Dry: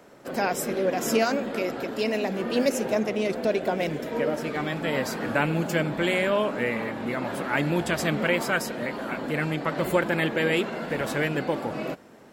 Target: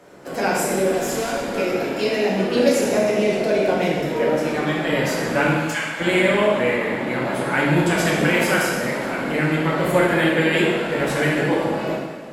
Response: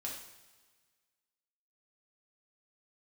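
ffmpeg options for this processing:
-filter_complex "[0:a]asettb=1/sr,asplit=3[a][b][c];[a]atrim=end=0.874[d];[b]atrim=start=0.87:end=1.5,asetpts=PTS-STARTPTS,afade=t=in:d=0.004:c=qsin,afade=t=out:st=0.626:d=0.004:c=qsin,volume=29.5dB,asoftclip=hard,volume=-29.5dB[e];[c]atrim=start=1.496[f];[d][e]acrossfade=d=0.004:c1=hsin:c2=qsin[g];[g][f]acrossfade=d=0.004:c1=qsin:c2=hsin,asplit=3[h][i][j];[h]afade=t=out:st=5.53:d=0.02[k];[i]highpass=f=1k:w=0.5412,highpass=f=1k:w=1.3066,afade=t=in:st=5.53:d=0.02,afade=t=out:st=5.99:d=0.02[l];[j]afade=t=in:st=5.99:d=0.02[m];[k][l][m]amix=inputs=3:normalize=0,asettb=1/sr,asplit=3[n][o][p];[n]atrim=end=8.054[q];[o]atrim=start=8.05:end=8.62,asetpts=PTS-STARTPTS,afade=t=in:d=0.004:c=qsin,afade=t=out:st=0.566:d=0.004:c=qsin,highshelf=f=11k:g=7.5[r];[p]atrim=start=8.616[s];[q][r]acrossfade=d=0.004:c1=hsin:c2=qsin[t];[t][s]acrossfade=d=0.004:c1=qsin:c2=hsin[u];[1:a]atrim=start_sample=2205,asetrate=25578,aresample=44100[v];[u][v]afir=irnorm=-1:irlink=0,volume=3dB"

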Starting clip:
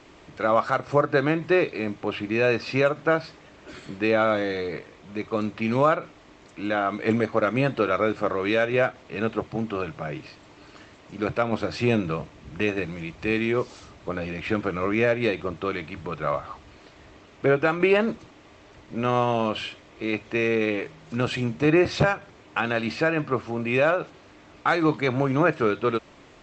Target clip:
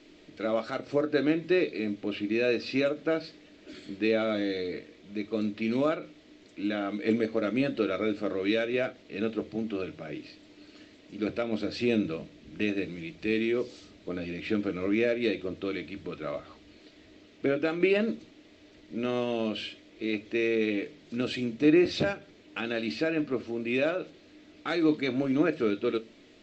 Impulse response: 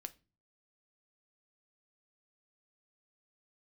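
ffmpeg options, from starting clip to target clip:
-filter_complex "[0:a]equalizer=f=125:t=o:w=1:g=-4,equalizer=f=250:t=o:w=1:g=9,equalizer=f=500:t=o:w=1:g=4,equalizer=f=1k:t=o:w=1:g=-10,equalizer=f=2k:t=o:w=1:g=3,equalizer=f=4k:t=o:w=1:g=8[a];[1:a]atrim=start_sample=2205,asetrate=74970,aresample=44100[b];[a][b]afir=irnorm=-1:irlink=0"

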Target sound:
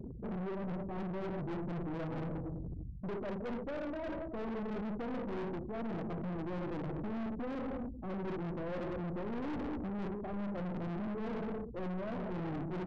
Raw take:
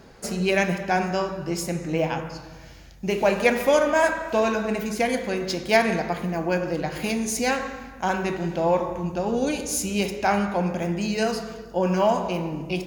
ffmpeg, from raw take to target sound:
-filter_complex "[0:a]acrossover=split=100|1800[a][b][c];[b]acrusher=bits=3:mode=log:mix=0:aa=0.000001[d];[a][d][c]amix=inputs=3:normalize=0,adynamicsmooth=sensitivity=2:basefreq=800,aecho=1:1:197:0.119,areverse,acompressor=threshold=-31dB:ratio=16,areverse,firequalizer=gain_entry='entry(320,0);entry(800,-14);entry(1100,-19)':delay=0.05:min_phase=1,aeval=exprs='val(0)+0.00158*(sin(2*PI*60*n/s)+sin(2*PI*2*60*n/s)/2+sin(2*PI*3*60*n/s)/3+sin(2*PI*4*60*n/s)/4+sin(2*PI*5*60*n/s)/5)':c=same,highpass=50,afftfilt=real='re*gte(hypot(re,im),0.00891)':imag='im*gte(hypot(re,im),0.00891)':win_size=1024:overlap=0.75,aeval=exprs='(tanh(224*val(0)+0.35)-tanh(0.35))/224':c=same,volume=10dB"

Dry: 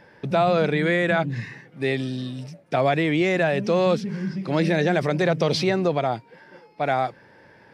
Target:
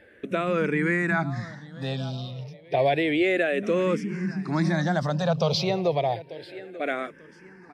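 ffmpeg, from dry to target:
-filter_complex "[0:a]asettb=1/sr,asplit=3[a][b][c];[a]atrim=end=2.314[d];[b]atrim=start=2.31:end=2.79,asetpts=PTS-STARTPTS,afade=t=in:d=0.004:c=qsin,afade=t=out:st=0.476:d=0.004:c=qsin,highshelf=f=5.6k:g=-10.5[e];[c]atrim=start=2.786[f];[d][e]acrossfade=d=0.004:c1=hsin:c2=qsin[g];[g][f]acrossfade=d=0.004:c1=qsin:c2=hsin,asplit=2[h][i];[i]aecho=0:1:891|1782|2673:0.141|0.0466|0.0154[j];[h][j]amix=inputs=2:normalize=0,asplit=2[k][l];[l]afreqshift=-0.3[m];[k][m]amix=inputs=2:normalize=1"

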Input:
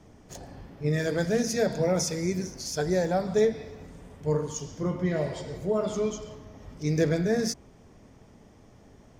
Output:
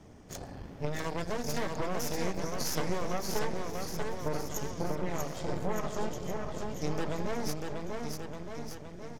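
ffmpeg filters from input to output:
-af "aeval=exprs='0.237*(cos(1*acos(clip(val(0)/0.237,-1,1)))-cos(1*PI/2))+0.0944*(cos(6*acos(clip(val(0)/0.237,-1,1)))-cos(6*PI/2))':c=same,acompressor=threshold=-30dB:ratio=6,aecho=1:1:640|1216|1734|2201|2621:0.631|0.398|0.251|0.158|0.1"

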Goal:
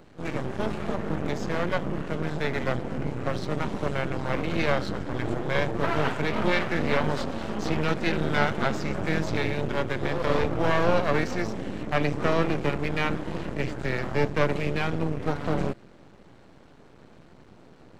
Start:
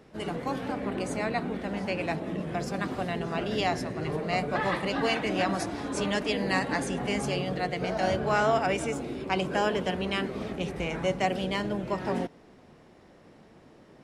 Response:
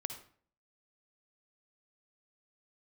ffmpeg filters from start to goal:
-filter_complex "[0:a]aeval=exprs='max(val(0),0)':c=same,asetrate=34398,aresample=44100,acrossover=split=4800[a][b];[b]acompressor=threshold=-56dB:ratio=4:attack=1:release=60[c];[a][c]amix=inputs=2:normalize=0,volume=6.5dB"

